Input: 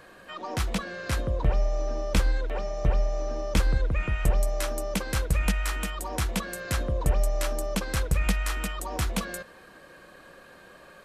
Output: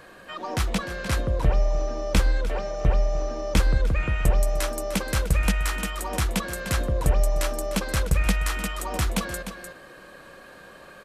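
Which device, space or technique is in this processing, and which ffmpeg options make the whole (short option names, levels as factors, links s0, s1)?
ducked delay: -filter_complex "[0:a]asplit=3[s0][s1][s2];[s1]adelay=301,volume=0.501[s3];[s2]apad=whole_len=500421[s4];[s3][s4]sidechaincompress=threshold=0.0251:ratio=5:attack=16:release=722[s5];[s0][s5]amix=inputs=2:normalize=0,volume=1.41"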